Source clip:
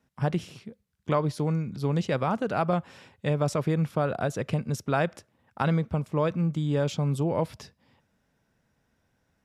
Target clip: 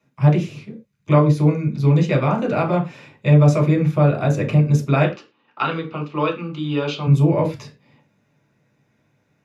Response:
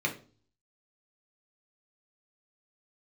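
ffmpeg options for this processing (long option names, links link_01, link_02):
-filter_complex "[0:a]asettb=1/sr,asplit=3[link_01][link_02][link_03];[link_01]atrim=end=5.044[link_04];[link_02]atrim=start=5.04:end=7.07,asetpts=PTS-STARTPTS,afade=type=in:duration=0.004:curve=qsin,afade=type=out:start_time=2.026:duration=0.004:curve=qsin,highpass=340,equalizer=frequency=600:width_type=q:width=4:gain=-9,equalizer=frequency=1300:width_type=q:width=4:gain=7,equalizer=frequency=2100:width_type=q:width=4:gain=-5,equalizer=frequency=2900:width_type=q:width=4:gain=10,equalizer=frequency=4300:width_type=q:width=4:gain=5,lowpass=frequency=5300:width=0.5412,lowpass=frequency=5300:width=1.3066[link_05];[link_03]atrim=start=7.066[link_06];[link_04][link_05]acrossfade=duration=0.004:curve1=hsin:curve2=qsin[link_07];[link_07][link_06]acrossfade=duration=0.004:curve1=qsin:curve2=hsin[link_08];[1:a]atrim=start_sample=2205,afade=type=out:start_time=0.17:duration=0.01,atrim=end_sample=7938[link_09];[link_08][link_09]afir=irnorm=-1:irlink=0"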